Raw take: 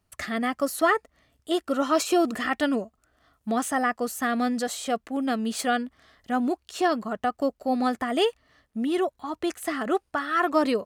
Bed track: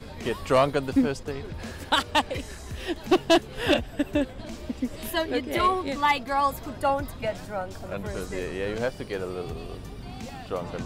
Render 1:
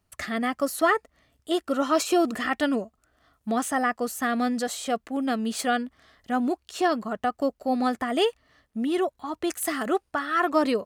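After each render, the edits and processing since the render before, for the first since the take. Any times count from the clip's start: 9.50–9.90 s: treble shelf 5.8 kHz +11 dB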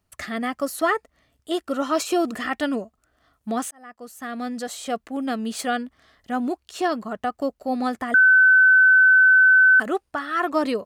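3.71–4.94 s: fade in; 8.14–9.80 s: bleep 1.52 kHz -10.5 dBFS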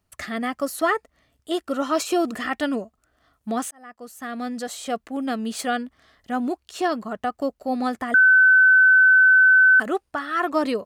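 no audible change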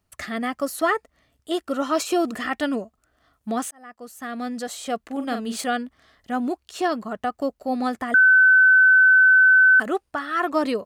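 5.02–5.64 s: doubling 43 ms -7 dB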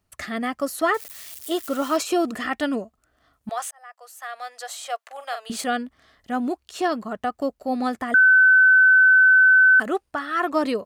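0.94–1.97 s: zero-crossing glitches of -29 dBFS; 3.49–5.50 s: steep high-pass 580 Hz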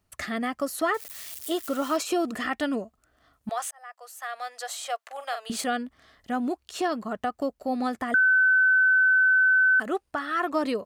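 compression 1.5:1, threshold -29 dBFS, peak gain reduction 6 dB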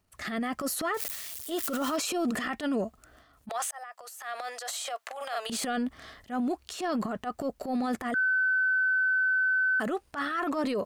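transient shaper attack -10 dB, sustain +10 dB; peak limiter -22.5 dBFS, peak gain reduction 10.5 dB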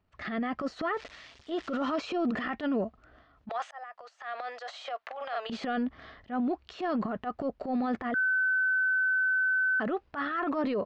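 Gaussian low-pass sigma 2.3 samples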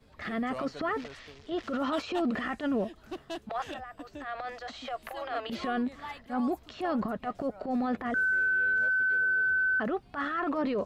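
add bed track -19.5 dB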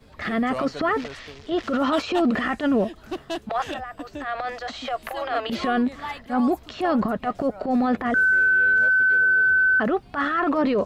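trim +8.5 dB

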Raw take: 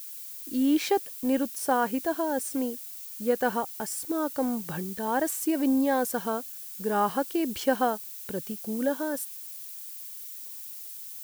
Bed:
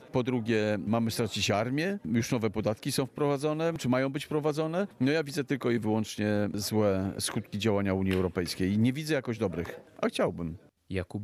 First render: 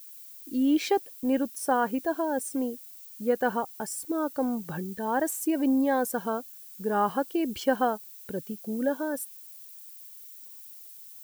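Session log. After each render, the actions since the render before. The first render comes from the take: noise reduction 8 dB, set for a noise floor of -41 dBFS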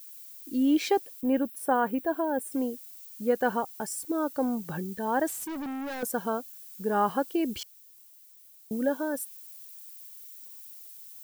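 1.21–2.52 s: peaking EQ 5.9 kHz -13.5 dB 0.93 oct; 5.27–6.03 s: overload inside the chain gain 33.5 dB; 7.63–8.71 s: room tone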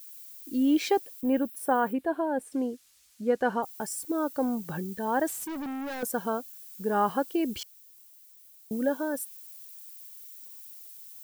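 1.93–3.63 s: distance through air 54 m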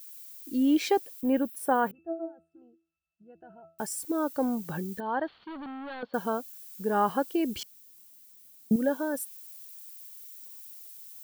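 1.91–3.79 s: pitch-class resonator E, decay 0.32 s; 5.00–6.14 s: rippled Chebyshev low-pass 4.5 kHz, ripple 6 dB; 7.58–8.76 s: peaking EQ 190 Hz +12.5 dB 1.3 oct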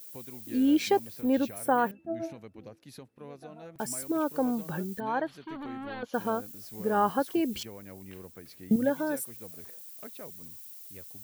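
add bed -18.5 dB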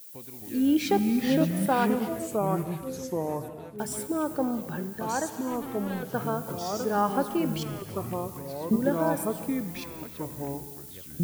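ever faster or slower copies 224 ms, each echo -4 st, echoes 2; gated-style reverb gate 370 ms flat, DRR 11 dB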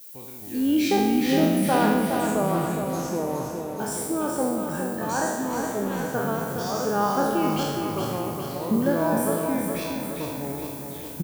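spectral sustain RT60 1.11 s; feedback delay 415 ms, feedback 53%, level -6 dB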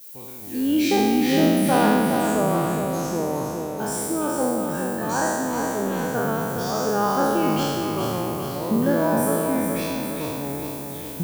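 spectral sustain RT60 1.56 s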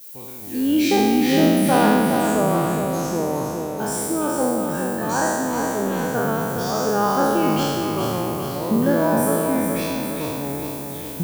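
trim +2 dB

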